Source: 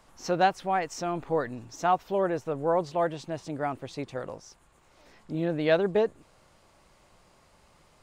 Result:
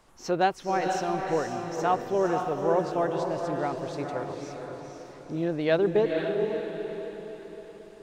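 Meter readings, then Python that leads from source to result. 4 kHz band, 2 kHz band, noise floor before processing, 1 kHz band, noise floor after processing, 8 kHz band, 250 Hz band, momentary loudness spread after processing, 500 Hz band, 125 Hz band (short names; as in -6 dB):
+0.5 dB, +0.5 dB, -62 dBFS, +0.5 dB, -48 dBFS, +0.5 dB, +2.5 dB, 16 LU, +2.0 dB, +1.0 dB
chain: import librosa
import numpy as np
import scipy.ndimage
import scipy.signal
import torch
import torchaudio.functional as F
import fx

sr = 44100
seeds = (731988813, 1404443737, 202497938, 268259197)

p1 = fx.peak_eq(x, sr, hz=380.0, db=5.5, octaves=0.36)
p2 = p1 + fx.echo_diffused(p1, sr, ms=491, feedback_pct=47, wet_db=-4.0, dry=0)
y = p2 * librosa.db_to_amplitude(-1.5)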